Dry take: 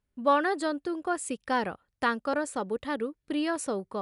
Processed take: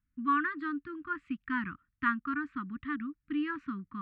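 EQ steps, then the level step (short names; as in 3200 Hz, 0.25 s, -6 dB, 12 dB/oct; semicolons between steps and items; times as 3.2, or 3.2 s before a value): elliptic band-stop 290–1200 Hz, stop band 40 dB; LPF 2300 Hz 24 dB/oct; dynamic EQ 970 Hz, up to +4 dB, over -47 dBFS, Q 4.2; 0.0 dB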